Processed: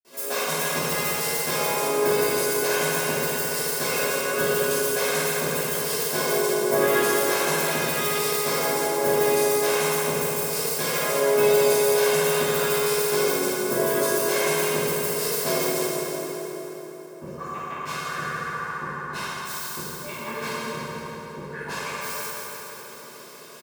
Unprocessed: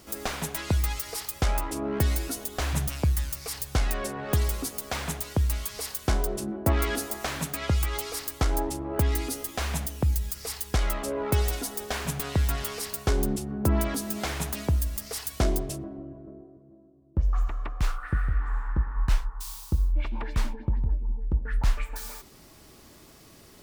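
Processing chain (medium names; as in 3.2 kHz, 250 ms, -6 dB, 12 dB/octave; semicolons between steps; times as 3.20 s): high-pass 220 Hz 24 dB/octave; comb 1.9 ms, depth 59%; reverberation RT60 4.3 s, pre-delay 46 ms, DRR -60 dB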